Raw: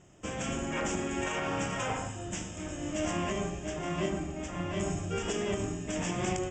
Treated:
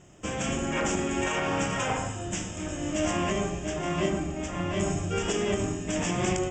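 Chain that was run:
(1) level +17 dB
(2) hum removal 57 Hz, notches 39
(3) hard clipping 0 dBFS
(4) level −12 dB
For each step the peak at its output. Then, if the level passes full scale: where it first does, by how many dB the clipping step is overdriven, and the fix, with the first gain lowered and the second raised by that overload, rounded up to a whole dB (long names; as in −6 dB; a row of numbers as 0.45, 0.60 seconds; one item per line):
−2.0, −2.0, −2.0, −14.0 dBFS
no step passes full scale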